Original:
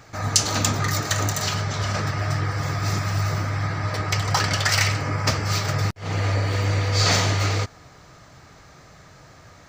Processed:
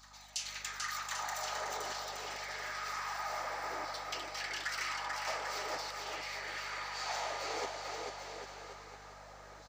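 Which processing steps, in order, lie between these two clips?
high-pass 240 Hz; peaking EQ 850 Hz +7 dB 0.28 oct; reverse; compression 4:1, threshold -32 dBFS, peak gain reduction 16.5 dB; reverse; LFO high-pass saw down 0.52 Hz 360–4400 Hz; reverse echo 1079 ms -20 dB; hum 50 Hz, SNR 22 dB; on a send: bouncing-ball echo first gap 440 ms, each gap 0.8×, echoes 5; on the sum: trim -9 dB

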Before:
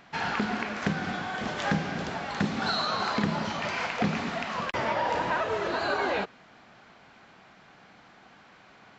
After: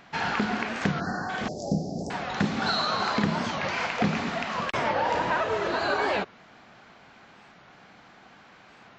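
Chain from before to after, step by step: 1.01–1.30 s: spectral selection erased 1.9–4.1 kHz; 1.48–2.11 s: Chebyshev band-stop 700–4900 Hz, order 4; warped record 45 rpm, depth 160 cents; trim +2 dB

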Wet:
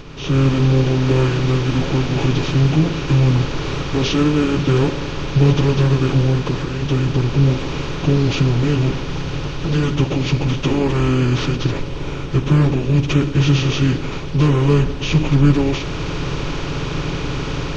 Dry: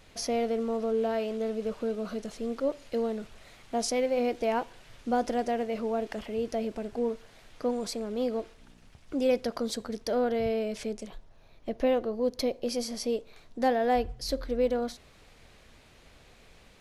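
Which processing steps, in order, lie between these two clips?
spectral levelling over time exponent 0.4; speed mistake 78 rpm record played at 45 rpm; FFT filter 150 Hz 0 dB, 250 Hz -9 dB, 1.1 kHz -2 dB; level rider gain up to 15 dB; bass shelf 320 Hz +7 dB; plain phase-vocoder stretch 0.61×; trim -1 dB

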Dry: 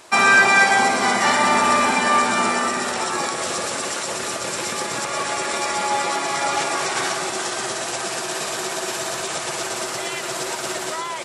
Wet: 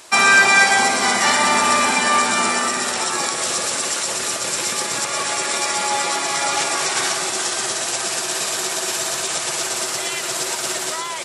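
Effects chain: treble shelf 2.5 kHz +8.5 dB; trim -1.5 dB

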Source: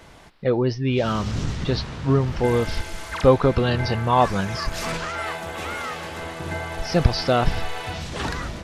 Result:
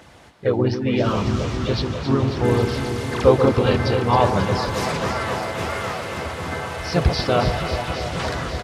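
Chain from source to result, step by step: high-pass 55 Hz 24 dB/octave; phaser 1.6 Hz, delay 4.2 ms, feedback 30%; echo whose repeats swap between lows and highs 135 ms, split 1.1 kHz, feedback 90%, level -7.5 dB; harmony voices -3 st -5 dB; trim -1 dB

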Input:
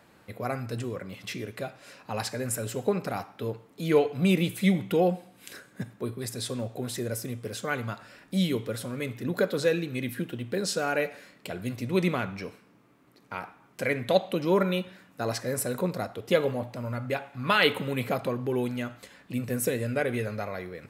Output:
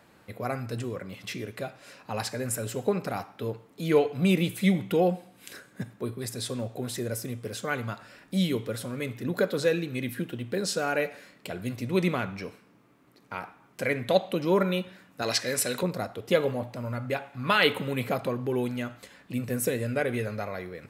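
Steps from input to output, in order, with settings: 15.22–15.83 s: frequency weighting D

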